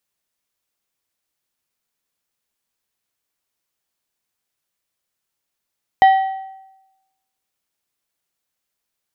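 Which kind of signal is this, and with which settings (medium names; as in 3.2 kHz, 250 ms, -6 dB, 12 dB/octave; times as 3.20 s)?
metal hit plate, lowest mode 769 Hz, decay 0.98 s, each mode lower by 11 dB, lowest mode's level -5 dB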